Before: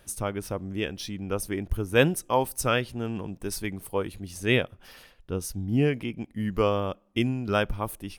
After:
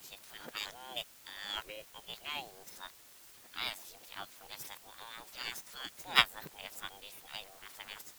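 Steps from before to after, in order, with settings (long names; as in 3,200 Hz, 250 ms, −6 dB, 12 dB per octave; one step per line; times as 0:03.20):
played backwards from end to start
gate on every frequency bin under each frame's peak −20 dB weak
formants moved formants +5 semitones
in parallel at −5 dB: bit-depth reduction 8 bits, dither triangular
on the sum: expander for the loud parts 2.5 to 1, over −29 dBFS
level +4 dB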